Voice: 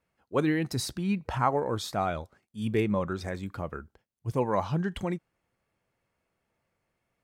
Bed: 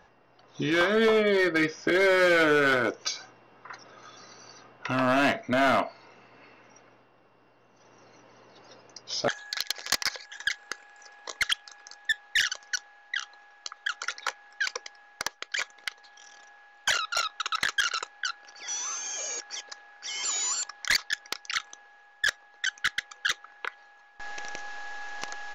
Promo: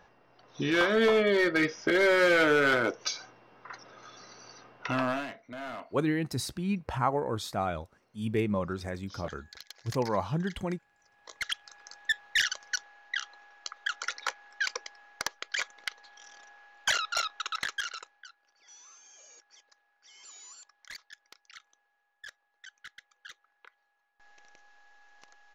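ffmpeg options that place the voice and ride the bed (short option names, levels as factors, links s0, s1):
-filter_complex "[0:a]adelay=5600,volume=0.794[s0];[1:a]volume=5.01,afade=t=out:st=4.93:d=0.33:silence=0.16788,afade=t=in:st=11.08:d=0.91:silence=0.16788,afade=t=out:st=17.1:d=1.19:silence=0.105925[s1];[s0][s1]amix=inputs=2:normalize=0"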